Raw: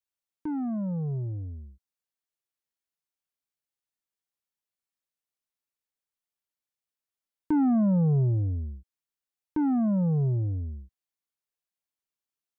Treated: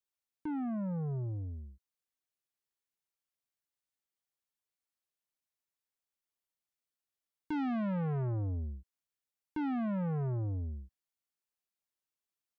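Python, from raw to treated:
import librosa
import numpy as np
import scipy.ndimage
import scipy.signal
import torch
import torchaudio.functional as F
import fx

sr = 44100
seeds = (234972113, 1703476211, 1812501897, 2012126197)

y = 10.0 ** (-29.5 / 20.0) * np.tanh(x / 10.0 ** (-29.5 / 20.0))
y = F.gain(torch.from_numpy(y), -2.5).numpy()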